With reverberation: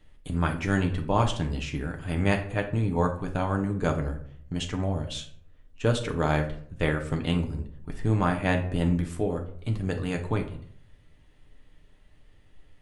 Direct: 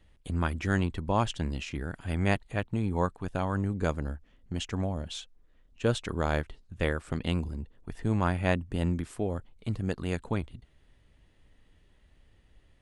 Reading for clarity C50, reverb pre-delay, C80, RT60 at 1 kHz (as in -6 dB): 10.0 dB, 7 ms, 14.0 dB, 0.55 s